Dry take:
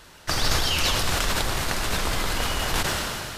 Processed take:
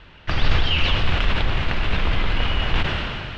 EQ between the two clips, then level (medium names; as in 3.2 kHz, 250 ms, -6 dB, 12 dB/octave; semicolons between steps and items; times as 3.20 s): four-pole ladder low-pass 3.4 kHz, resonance 45%; bass shelf 220 Hz +10.5 dB; +7.0 dB